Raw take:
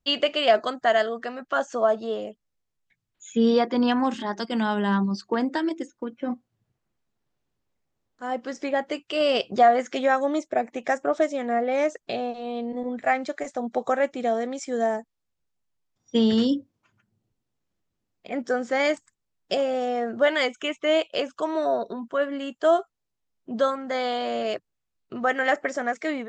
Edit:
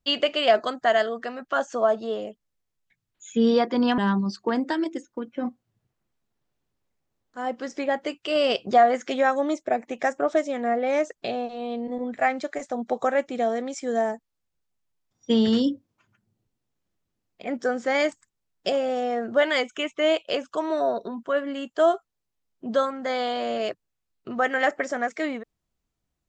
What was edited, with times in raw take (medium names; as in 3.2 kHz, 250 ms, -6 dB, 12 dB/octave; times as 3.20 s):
3.98–4.83 s: delete